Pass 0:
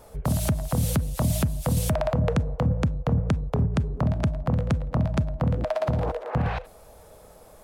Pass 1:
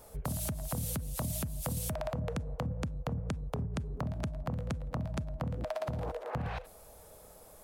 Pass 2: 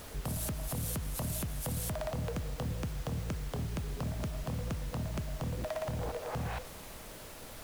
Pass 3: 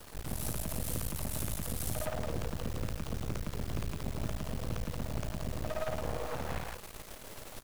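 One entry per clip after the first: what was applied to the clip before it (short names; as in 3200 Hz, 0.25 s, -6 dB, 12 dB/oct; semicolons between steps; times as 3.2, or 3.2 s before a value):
high shelf 6700 Hz +9.5 dB; compressor, threshold -26 dBFS, peak gain reduction 8 dB; gain -6 dB
soft clip -31 dBFS, distortion -16 dB; added noise pink -50 dBFS; gain +1.5 dB
loudspeakers at several distances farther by 19 m -2 dB, 56 m -1 dB; half-wave rectifier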